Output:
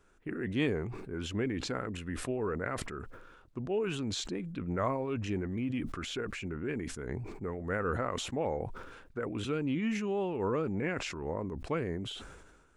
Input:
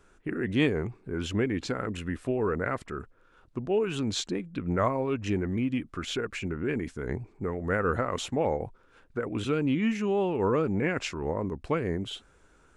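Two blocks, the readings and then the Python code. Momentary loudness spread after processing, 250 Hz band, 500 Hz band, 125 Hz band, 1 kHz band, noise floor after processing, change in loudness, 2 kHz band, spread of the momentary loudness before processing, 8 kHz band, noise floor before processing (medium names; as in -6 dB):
9 LU, -5.5 dB, -5.5 dB, -4.5 dB, -5.0 dB, -59 dBFS, -5.0 dB, -5.0 dB, 9 LU, -2.5 dB, -61 dBFS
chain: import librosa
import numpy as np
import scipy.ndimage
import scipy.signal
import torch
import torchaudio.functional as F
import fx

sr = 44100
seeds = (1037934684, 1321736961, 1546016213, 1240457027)

y = fx.sustainer(x, sr, db_per_s=43.0)
y = y * 10.0 ** (-6.0 / 20.0)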